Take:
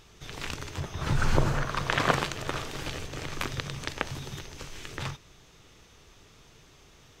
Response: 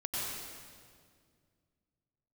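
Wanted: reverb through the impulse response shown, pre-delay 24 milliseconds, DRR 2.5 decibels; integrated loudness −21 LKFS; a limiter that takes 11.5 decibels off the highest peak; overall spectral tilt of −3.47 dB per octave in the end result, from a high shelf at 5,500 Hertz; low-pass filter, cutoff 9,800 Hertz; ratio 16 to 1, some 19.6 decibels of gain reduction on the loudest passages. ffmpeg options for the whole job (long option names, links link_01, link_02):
-filter_complex "[0:a]lowpass=9800,highshelf=frequency=5500:gain=8.5,acompressor=threshold=-37dB:ratio=16,alimiter=level_in=6.5dB:limit=-24dB:level=0:latency=1,volume=-6.5dB,asplit=2[link_01][link_02];[1:a]atrim=start_sample=2205,adelay=24[link_03];[link_02][link_03]afir=irnorm=-1:irlink=0,volume=-7dB[link_04];[link_01][link_04]amix=inputs=2:normalize=0,volume=22dB"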